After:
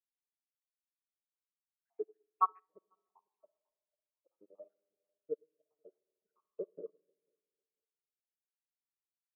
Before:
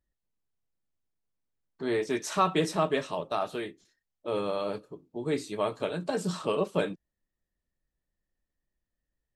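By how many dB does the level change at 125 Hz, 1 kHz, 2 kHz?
under -35 dB, -7.5 dB, under -40 dB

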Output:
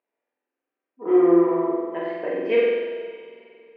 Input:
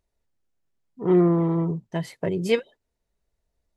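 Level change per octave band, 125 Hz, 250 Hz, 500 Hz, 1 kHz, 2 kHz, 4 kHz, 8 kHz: -18.0 dB, +1.5 dB, +5.0 dB, +4.5 dB, +3.5 dB, no reading, under -30 dB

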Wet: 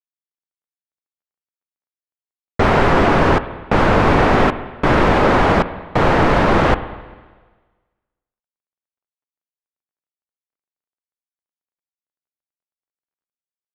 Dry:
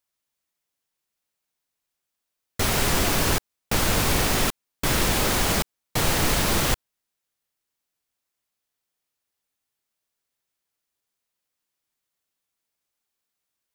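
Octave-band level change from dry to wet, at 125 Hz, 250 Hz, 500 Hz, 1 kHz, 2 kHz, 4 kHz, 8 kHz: +8.5 dB, +11.0 dB, +13.0 dB, +13.0 dB, +8.0 dB, -2.5 dB, -16.0 dB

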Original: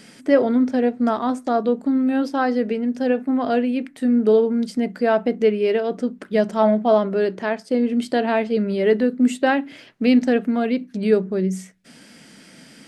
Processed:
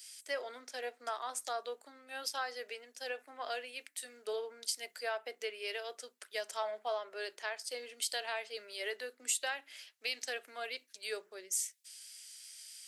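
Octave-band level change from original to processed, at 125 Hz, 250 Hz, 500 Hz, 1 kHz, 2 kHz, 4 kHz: no reading, under -40 dB, -22.0 dB, -17.0 dB, -11.0 dB, -3.5 dB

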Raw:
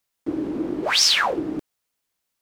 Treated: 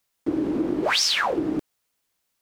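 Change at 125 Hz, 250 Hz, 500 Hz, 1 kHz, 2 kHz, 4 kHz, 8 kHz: +2.0 dB, +2.0 dB, +1.0 dB, -1.5 dB, -2.0 dB, -4.0 dB, -5.0 dB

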